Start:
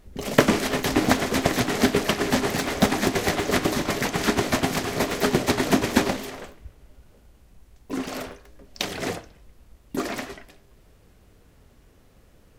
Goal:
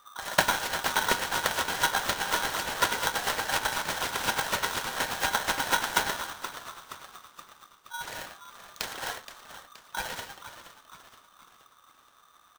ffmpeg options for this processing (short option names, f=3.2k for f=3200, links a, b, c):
-filter_complex "[0:a]asettb=1/sr,asplit=3[a][b][c];[a]atrim=end=6.334[d];[b]atrim=start=6.33:end=8.01,asetpts=PTS-STARTPTS,afade=t=in:d=0.004:c=qsin,afade=t=out:st=1.676:d=0.004:c=qsin,asplit=3[e][f][g];[e]bandpass=f=270:t=q:w=8,volume=0dB[h];[f]bandpass=f=2.29k:t=q:w=8,volume=-6dB[i];[g]bandpass=f=3.01k:t=q:w=8,volume=-9dB[j];[h][i][j]amix=inputs=3:normalize=0[k];[c]atrim=start=8.006[l];[d][k]acrossfade=d=0.004:c1=hsin:c2=qsin[m];[m][l]acrossfade=d=0.004:c1=qsin:c2=hsin,asplit=6[n][o][p][q][r][s];[o]adelay=473,afreqshift=-72,volume=-12dB[t];[p]adelay=946,afreqshift=-144,volume=-17.7dB[u];[q]adelay=1419,afreqshift=-216,volume=-23.4dB[v];[r]adelay=1892,afreqshift=-288,volume=-29dB[w];[s]adelay=2365,afreqshift=-360,volume=-34.7dB[x];[n][t][u][v][w][x]amix=inputs=6:normalize=0,aeval=exprs='val(0)*sgn(sin(2*PI*1200*n/s))':c=same,volume=-6.5dB"